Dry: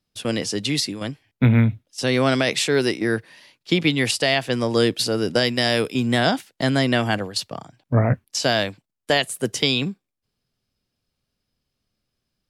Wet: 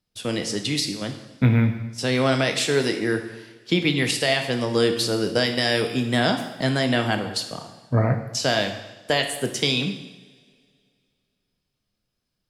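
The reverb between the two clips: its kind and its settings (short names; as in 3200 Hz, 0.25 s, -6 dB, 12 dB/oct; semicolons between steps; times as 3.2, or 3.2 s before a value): two-slope reverb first 0.93 s, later 2.5 s, from -19 dB, DRR 5 dB; gain -2.5 dB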